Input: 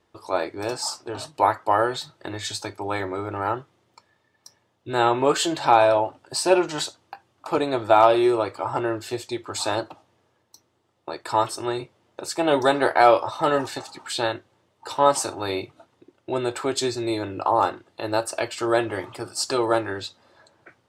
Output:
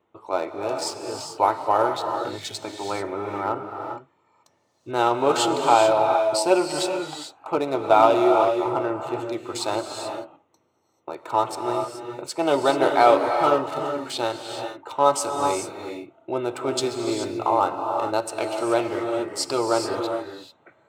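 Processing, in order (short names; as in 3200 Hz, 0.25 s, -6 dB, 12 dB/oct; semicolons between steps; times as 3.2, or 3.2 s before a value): Wiener smoothing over 9 samples; HPF 82 Hz; low shelf 130 Hz -7.5 dB; notch 1700 Hz, Q 5.6; non-linear reverb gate 0.46 s rising, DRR 4 dB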